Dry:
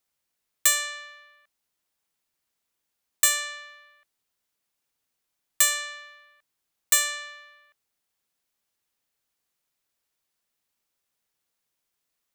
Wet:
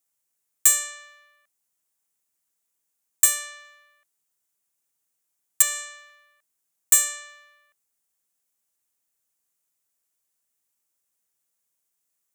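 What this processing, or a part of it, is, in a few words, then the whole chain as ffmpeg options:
budget condenser microphone: -filter_complex "[0:a]asettb=1/sr,asplit=3[link_01][link_02][link_03];[link_01]atrim=end=5.624[link_04];[link_02]atrim=start=5.62:end=6.1,asetpts=PTS-STARTPTS,afade=type=in:duration=0.004:curve=qsin,afade=type=out:start_time=0.476:duration=0.004:curve=qsin,acrossover=split=5500[link_05][link_06];[link_06]acompressor=threshold=-34dB:ratio=4:attack=1:release=60[link_07];[link_05][link_07]amix=inputs=2:normalize=0[link_08];[link_03]atrim=start=6.096[link_09];[link_04][link_08]acrossfade=duration=0.004:curve1=hsin:curve2=qsin[link_10];[link_10][link_09]acrossfade=duration=0.004:curve1=qsin:curve2=hsin,highpass=64,highshelf=frequency=5700:width_type=q:width=1.5:gain=7.5,asettb=1/sr,asplit=3[link_11][link_12][link_13];[link_11]atrim=end=3.254[link_14];[link_12]atrim=start=3.25:end=3.65,asetpts=PTS-STARTPTS,afade=type=in:duration=0.004:curve=qsin,afade=type=out:start_time=0.396:duration=0.004:curve=qsin,bandreject=frequency=7300:width=5.9[link_15];[link_13]atrim=start=3.646[link_16];[link_14][link_15]acrossfade=duration=0.004:curve1=hsin:curve2=qsin[link_17];[link_17][link_16]acrossfade=duration=0.004:curve1=qsin:curve2=hsin,volume=-4dB"

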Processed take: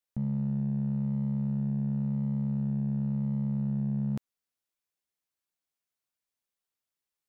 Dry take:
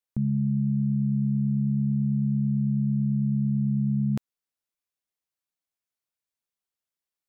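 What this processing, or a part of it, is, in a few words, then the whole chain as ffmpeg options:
clipper into limiter: -af "asoftclip=type=hard:threshold=-20dB,alimiter=level_in=1dB:limit=-24dB:level=0:latency=1,volume=-1dB"

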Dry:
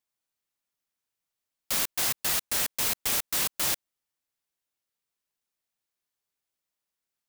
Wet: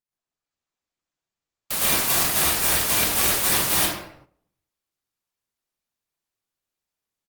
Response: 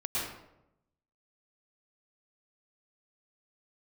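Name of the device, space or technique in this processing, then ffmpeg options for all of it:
speakerphone in a meeting room: -filter_complex "[1:a]atrim=start_sample=2205[link_01];[0:a][link_01]afir=irnorm=-1:irlink=0,asplit=2[link_02][link_03];[link_03]adelay=140,highpass=300,lowpass=3400,asoftclip=type=hard:threshold=-19.5dB,volume=-28dB[link_04];[link_02][link_04]amix=inputs=2:normalize=0,dynaudnorm=framelen=300:gausssize=3:maxgain=5dB,agate=range=-10dB:threshold=-49dB:ratio=16:detection=peak" -ar 48000 -c:a libopus -b:a 24k

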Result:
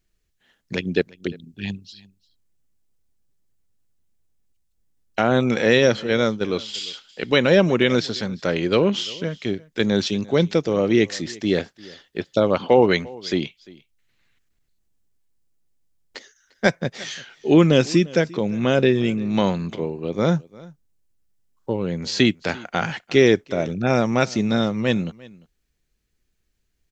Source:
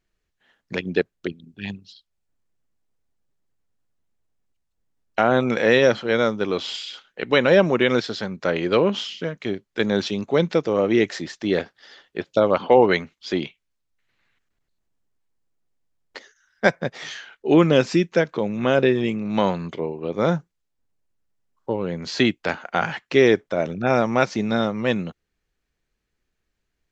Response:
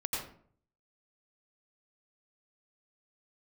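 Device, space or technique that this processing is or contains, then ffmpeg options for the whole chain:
smiley-face EQ: -filter_complex "[0:a]lowshelf=frequency=140:gain=3.5,equalizer=frequency=990:width_type=o:width=2.4:gain=-5.5,highshelf=frequency=6000:gain=6.5,asplit=3[link_01][link_02][link_03];[link_01]afade=type=out:start_time=6.06:duration=0.02[link_04];[link_02]agate=range=-33dB:threshold=-23dB:ratio=3:detection=peak,afade=type=in:start_time=6.06:duration=0.02,afade=type=out:start_time=6.73:duration=0.02[link_05];[link_03]afade=type=in:start_time=6.73:duration=0.02[link_06];[link_04][link_05][link_06]amix=inputs=3:normalize=0,aecho=1:1:348:0.075,volume=2.5dB"

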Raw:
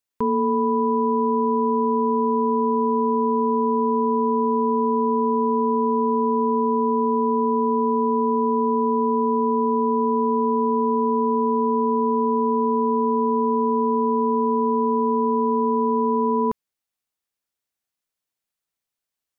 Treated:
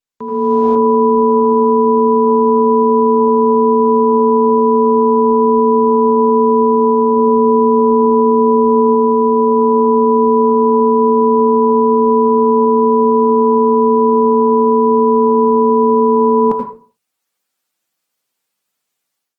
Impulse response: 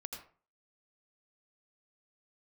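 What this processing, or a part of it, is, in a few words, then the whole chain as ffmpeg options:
far-field microphone of a smart speaker: -filter_complex "[0:a]bandreject=frequency=60:width_type=h:width=6,bandreject=frequency=120:width_type=h:width=6,bandreject=frequency=180:width_type=h:width=6,asettb=1/sr,asplit=3[link_01][link_02][link_03];[link_01]atrim=end=7.164[link_04];[link_02]atrim=start=7.16:end=8.95,asetpts=PTS-STARTPTS,afade=type=in:duration=0.004:curve=qsin,afade=type=out:start_time=1.786:duration=0.004:curve=qsin,equalizer=frequency=190:width=0.38:gain=2[link_05];[link_03]atrim=start=8.946[link_06];[link_04][link_05]acrossfade=duration=0.004:curve1=hsin:curve2=qsin[link_07];[link_07][link_06]acrossfade=duration=0.004:curve1=qsin:curve2=hsin[link_08];[1:a]atrim=start_sample=2205[link_09];[link_08][link_09]afir=irnorm=-1:irlink=0,highpass=frequency=130:width=0.5412,highpass=frequency=130:width=1.3066,dynaudnorm=framelen=270:gausssize=3:maxgain=16dB,volume=-1dB" -ar 48000 -c:a libopus -b:a 16k

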